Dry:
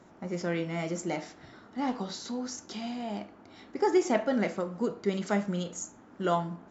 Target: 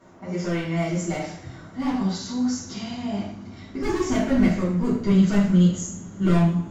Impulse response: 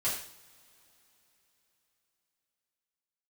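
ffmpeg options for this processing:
-filter_complex "[0:a]asoftclip=type=hard:threshold=-25.5dB,asubboost=boost=7:cutoff=220[link_01];[1:a]atrim=start_sample=2205[link_02];[link_01][link_02]afir=irnorm=-1:irlink=0"

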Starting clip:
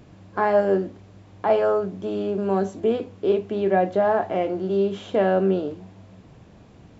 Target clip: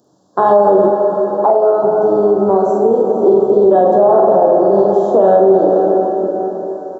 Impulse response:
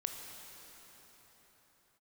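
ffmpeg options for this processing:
-filter_complex "[0:a]highpass=290,highshelf=frequency=2300:gain=7.5,aecho=1:1:44|73:0.631|0.335,afwtdn=0.0562,asuperstop=centerf=2300:order=4:qfactor=0.61[link_01];[1:a]atrim=start_sample=2205[link_02];[link_01][link_02]afir=irnorm=-1:irlink=0,asettb=1/sr,asplit=3[link_03][link_04][link_05];[link_03]atrim=end=0.874[link_06];[link_04]atrim=start=0.87:end=3.26,asetpts=PTS-STARTPTS,afade=type=in:duration=0.004:curve=qsin,afade=type=out:start_time=2.386:duration=0.004:curve=qsin,acompressor=threshold=-22dB:ratio=6[link_07];[link_05]atrim=start=3.256[link_08];[link_06][link_07]acrossfade=duration=0.004:curve1=hsin:curve2=qsin[link_09];[link_09][link_08]acrossfade=duration=0.004:curve1=qsin:curve2=hsin,alimiter=level_in=15dB:limit=-1dB:release=50:level=0:latency=1,volume=-1dB"

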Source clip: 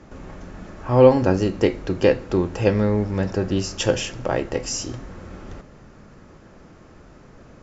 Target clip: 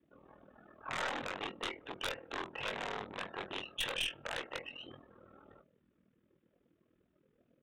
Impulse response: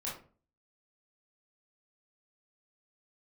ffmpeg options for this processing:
-filter_complex "[0:a]afftdn=noise_reduction=26:noise_floor=-39,aeval=exprs='val(0)*sin(2*PI*20*n/s)':channel_layout=same,alimiter=limit=-12.5dB:level=0:latency=1:release=69,aresample=8000,aeval=exprs='0.0841*(abs(mod(val(0)/0.0841+3,4)-2)-1)':channel_layout=same,aresample=44100,aderivative,aeval=exprs='0.0376*(cos(1*acos(clip(val(0)/0.0376,-1,1)))-cos(1*PI/2))+0.00668*(cos(4*acos(clip(val(0)/0.0376,-1,1)))-cos(4*PI/2))+0.0133*(cos(5*acos(clip(val(0)/0.0376,-1,1)))-cos(5*PI/2))':channel_layout=same,asplit=2[link_01][link_02];[link_02]adelay=21,volume=-9dB[link_03];[link_01][link_03]amix=inputs=2:normalize=0,volume=1dB"

